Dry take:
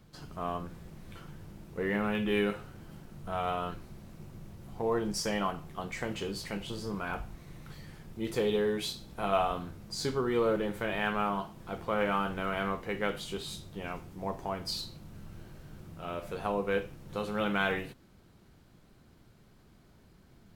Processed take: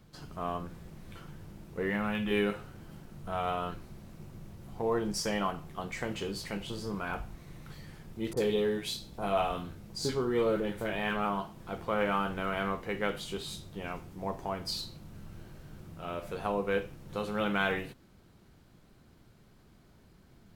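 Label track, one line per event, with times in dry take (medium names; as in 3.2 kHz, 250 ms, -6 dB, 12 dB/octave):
1.900000	2.310000	peaking EQ 390 Hz -9.5 dB 0.57 oct
8.330000	11.250000	bands offset in time lows, highs 40 ms, split 1.2 kHz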